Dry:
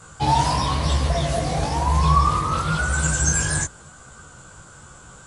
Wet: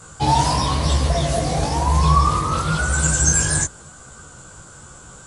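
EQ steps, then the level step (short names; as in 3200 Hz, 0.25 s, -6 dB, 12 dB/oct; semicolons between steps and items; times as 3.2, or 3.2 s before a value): tone controls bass -6 dB, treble +5 dB; low shelf 400 Hz +8.5 dB; 0.0 dB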